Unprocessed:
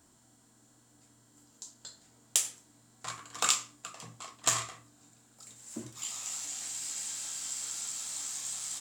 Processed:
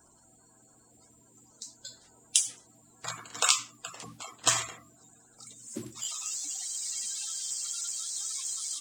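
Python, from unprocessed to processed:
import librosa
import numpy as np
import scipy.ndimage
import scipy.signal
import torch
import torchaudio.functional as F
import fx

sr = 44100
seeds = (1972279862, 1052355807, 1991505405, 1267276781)

y = fx.spec_quant(x, sr, step_db=30)
y = y * 10.0 ** (3.5 / 20.0)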